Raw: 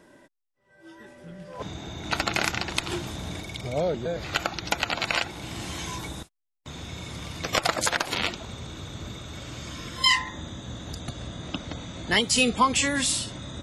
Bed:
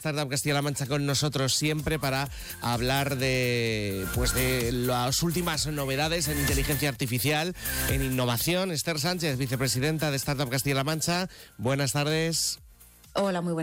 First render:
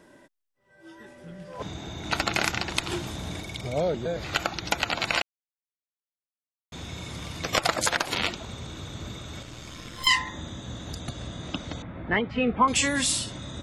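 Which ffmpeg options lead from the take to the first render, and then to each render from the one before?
-filter_complex "[0:a]asettb=1/sr,asplit=3[a][b][c];[a]atrim=end=9.424[d];[b]atrim=start=9.42:end=10.07,asetpts=PTS-STARTPTS,afade=t=in:d=0.004:c=qsin,afade=t=out:st=0.646:d=0.004:c=qsin,aeval=exprs='(tanh(31.6*val(0)+0.75)-tanh(0.75))/31.6':c=same[e];[c]atrim=start=10.066[f];[d][e]acrossfade=d=0.004:c1=hsin:c2=qsin[g];[g][f]acrossfade=d=0.004:c1=qsin:c2=hsin,asettb=1/sr,asplit=3[h][i][j];[h]atrim=end=11.824[k];[i]atrim=start=11.82:end=12.68,asetpts=PTS-STARTPTS,afade=t=in:d=0.004:c=qsin,afade=t=out:st=0.856:d=0.004:c=qsin,lowpass=f=2.1k:w=0.5412,lowpass=f=2.1k:w=1.3066[l];[j]atrim=start=12.676[m];[k][l]acrossfade=d=0.004:c1=hsin:c2=qsin[n];[n][m]acrossfade=d=0.004:c1=qsin:c2=hsin,asplit=3[o][p][q];[o]atrim=end=5.22,asetpts=PTS-STARTPTS,afade=t=out:st=5.216:d=0.004:c=hsin[r];[p]atrim=start=5.22:end=6.72,asetpts=PTS-STARTPTS,volume=0[s];[q]atrim=start=6.72,asetpts=PTS-STARTPTS,afade=t=in:d=0.004:c=hsin[t];[r][s][t]concat=n=3:v=0:a=1"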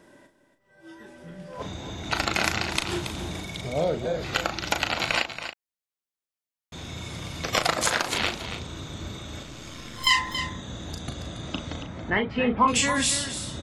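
-filter_complex "[0:a]asplit=2[a][b];[b]adelay=37,volume=-7.5dB[c];[a][c]amix=inputs=2:normalize=0,aecho=1:1:278:0.316"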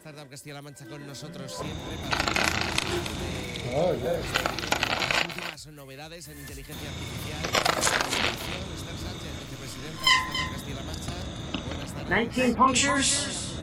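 -filter_complex "[1:a]volume=-15dB[a];[0:a][a]amix=inputs=2:normalize=0"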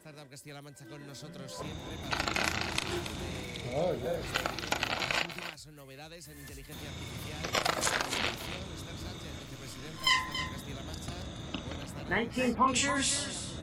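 -af "volume=-6dB"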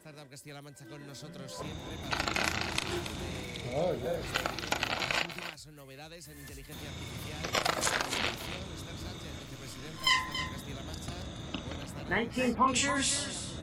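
-af anull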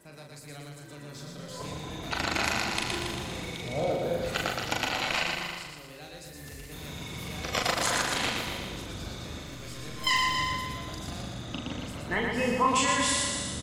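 -filter_complex "[0:a]asplit=2[a][b];[b]adelay=41,volume=-5dB[c];[a][c]amix=inputs=2:normalize=0,aecho=1:1:118|236|354|472|590|708|826|944:0.668|0.368|0.202|0.111|0.0612|0.0336|0.0185|0.0102"

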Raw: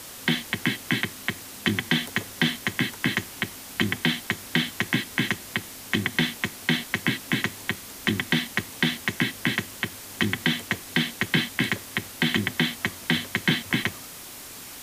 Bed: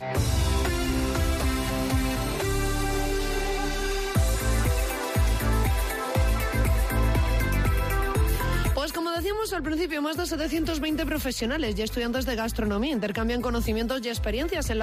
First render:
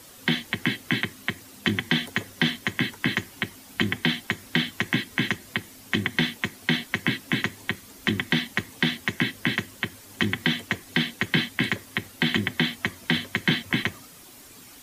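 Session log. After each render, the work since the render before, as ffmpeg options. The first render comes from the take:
-af "afftdn=nr=9:nf=-41"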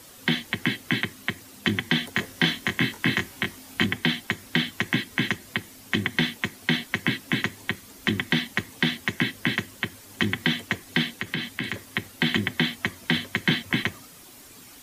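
-filter_complex "[0:a]asettb=1/sr,asplit=3[a][b][c];[a]atrim=end=2.144[d];[b]atrim=start=2.14:end=3.86,asetpts=PTS-STARTPTS,afade=t=in:d=0.004:c=qsin,afade=t=out:st=1.716:d=0.004:c=qsin,asplit=2[e][f];[f]adelay=23,volume=-3dB[g];[e][g]amix=inputs=2:normalize=0,atrim=end_sample=75852[h];[c]atrim=start=3.856[i];[d][h]acrossfade=d=0.004:c1=hsin:c2=qsin[j];[j][i]acrossfade=d=0.004:c1=qsin:c2=hsin,asettb=1/sr,asplit=3[k][l][m];[k]atrim=end=11.104[n];[l]atrim=start=11.1:end=11.74,asetpts=PTS-STARTPTS,afade=t=in:d=0.004:c=qsin,afade=t=out:st=0.636:d=0.004:c=qsin,acompressor=threshold=-27dB:ratio=2.5:attack=3.2:release=140:knee=1:detection=peak[o];[m]atrim=start=11.736[p];[n][o]acrossfade=d=0.004:c1=hsin:c2=qsin[q];[q][p]acrossfade=d=0.004:c1=qsin:c2=hsin"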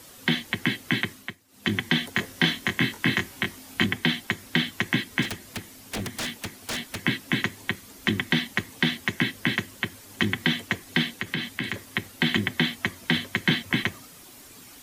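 -filter_complex "[0:a]asettb=1/sr,asplit=3[a][b][c];[a]atrim=end=5.224[d];[b]atrim=start=5.22:end=6.97,asetpts=PTS-STARTPTS,afade=t=in:d=0.004:c=qsin,afade=t=out:st=1.746:d=0.004:c=qsin,aeval=exprs='0.0596*(abs(mod(val(0)/0.0596+3,4)-2)-1)':c=same[e];[c]atrim=start=6.966[f];[d][e]acrossfade=d=0.004:c1=hsin:c2=qsin[g];[g][f]acrossfade=d=0.004:c1=qsin:c2=hsin,asplit=3[h][i][j];[h]atrim=end=1.37,asetpts=PTS-STARTPTS,afade=t=out:st=1.11:d=0.26:silence=0.149624[k];[i]atrim=start=1.37:end=1.48,asetpts=PTS-STARTPTS,volume=-16.5dB[l];[j]atrim=start=1.48,asetpts=PTS-STARTPTS,afade=t=in:d=0.26:silence=0.149624[m];[k][l][m]concat=n=3:v=0:a=1"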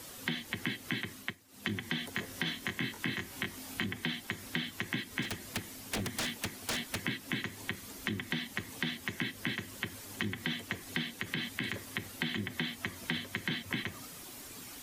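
-af "alimiter=limit=-14.5dB:level=0:latency=1:release=44,acompressor=threshold=-32dB:ratio=6"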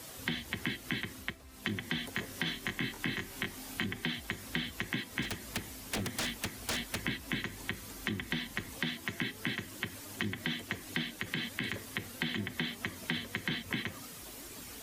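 -filter_complex "[1:a]volume=-29.5dB[a];[0:a][a]amix=inputs=2:normalize=0"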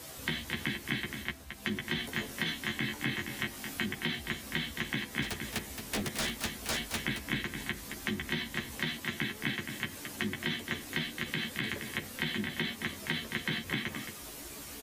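-filter_complex "[0:a]asplit=2[a][b];[b]adelay=14,volume=-4dB[c];[a][c]amix=inputs=2:normalize=0,aecho=1:1:221:0.398"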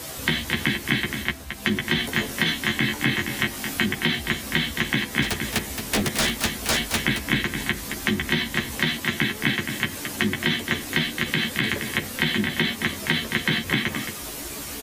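-af "volume=11dB"

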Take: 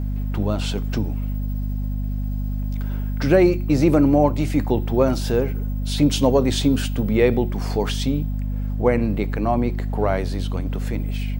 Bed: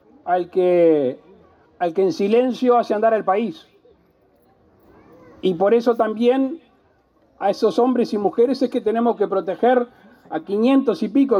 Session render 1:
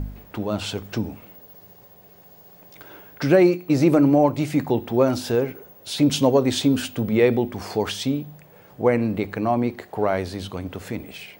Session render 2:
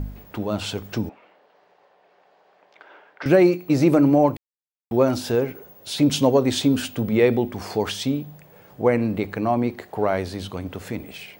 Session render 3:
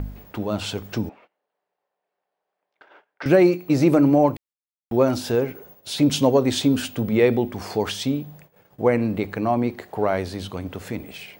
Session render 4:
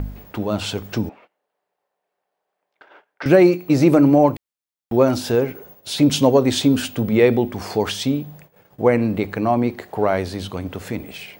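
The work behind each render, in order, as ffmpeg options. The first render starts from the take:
-af "bandreject=f=50:t=h:w=4,bandreject=f=100:t=h:w=4,bandreject=f=150:t=h:w=4,bandreject=f=200:t=h:w=4,bandreject=f=250:t=h:w=4"
-filter_complex "[0:a]asettb=1/sr,asplit=3[a][b][c];[a]atrim=end=1.094[d];[b]atrim=start=1.09:end=3.26,asetpts=PTS-STARTPTS,afade=t=in:d=0.004:c=qsin,afade=t=out:st=2.166:d=0.004:c=qsin,highpass=580,lowpass=2.6k[e];[c]atrim=start=3.256[f];[d][e]acrossfade=d=0.004:c1=hsin:c2=qsin[g];[g][f]acrossfade=d=0.004:c1=qsin:c2=hsin,asplit=3[h][i][j];[h]atrim=end=4.37,asetpts=PTS-STARTPTS,afade=t=out:st=4.366:d=0.004:c=hsin[k];[i]atrim=start=4.37:end=4.91,asetpts=PTS-STARTPTS,volume=0[l];[j]atrim=start=4.91,asetpts=PTS-STARTPTS,afade=t=in:d=0.004:c=hsin[m];[k][l][m]concat=n=3:v=0:a=1"
-af "agate=range=-23dB:threshold=-47dB:ratio=16:detection=peak"
-af "volume=3dB"

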